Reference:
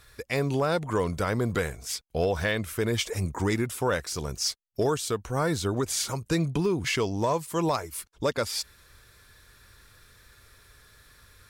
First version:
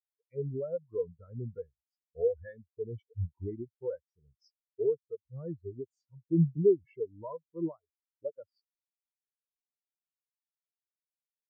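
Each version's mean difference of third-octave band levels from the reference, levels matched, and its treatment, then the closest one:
21.0 dB: every bin expanded away from the loudest bin 4 to 1
level +1.5 dB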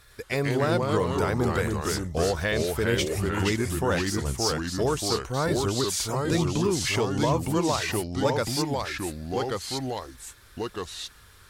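8.0 dB: delay with pitch and tempo change per echo 106 ms, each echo −2 semitones, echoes 2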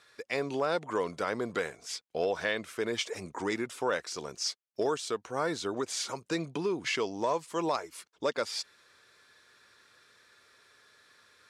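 4.0 dB: band-pass filter 290–6,700 Hz
level −3 dB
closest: third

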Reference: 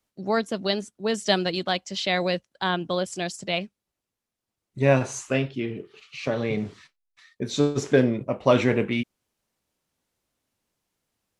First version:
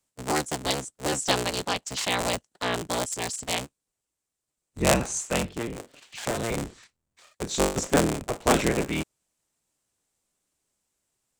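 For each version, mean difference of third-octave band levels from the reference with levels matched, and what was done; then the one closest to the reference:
11.5 dB: sub-harmonics by changed cycles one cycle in 3, inverted
parametric band 7,900 Hz +12 dB 0.68 octaves
level −3 dB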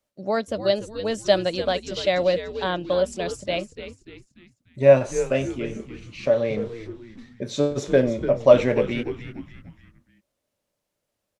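5.5 dB: parametric band 580 Hz +14 dB 0.26 octaves
on a send: echo with shifted repeats 294 ms, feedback 44%, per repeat −110 Hz, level −11.5 dB
on the sum: level −2.5 dB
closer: second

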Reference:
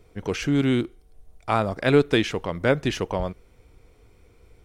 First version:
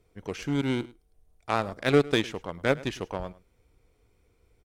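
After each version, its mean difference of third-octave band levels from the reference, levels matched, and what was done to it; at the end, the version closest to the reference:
3.0 dB: high-shelf EQ 6,200 Hz +3.5 dB
harmonic generator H 3 −25 dB, 7 −24 dB, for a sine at −6 dBFS
on a send: single-tap delay 105 ms −20 dB
on the sum: level −2.5 dB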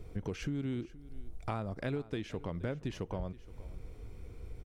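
4.0 dB: low-shelf EQ 330 Hz +10.5 dB
downward compressor 6 to 1, threshold −34 dBFS, peak gain reduction 24.5 dB
single-tap delay 473 ms −19 dB
level −1.5 dB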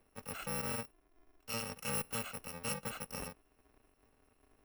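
13.0 dB: samples in bit-reversed order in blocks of 128 samples
three-way crossover with the lows and the highs turned down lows −14 dB, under 230 Hz, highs −15 dB, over 2,700 Hz
hard clipping −26 dBFS, distortion −14 dB
level −5.5 dB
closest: first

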